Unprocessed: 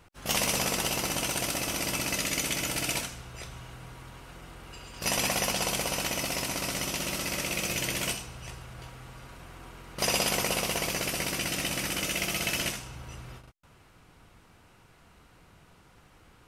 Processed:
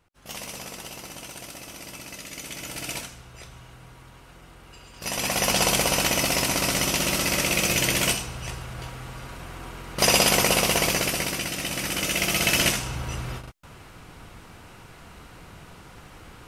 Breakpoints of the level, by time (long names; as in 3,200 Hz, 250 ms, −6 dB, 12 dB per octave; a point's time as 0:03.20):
0:02.26 −9.5 dB
0:02.92 −2 dB
0:05.10 −2 dB
0:05.57 +8 dB
0:10.88 +8 dB
0:11.55 +0.5 dB
0:12.90 +11.5 dB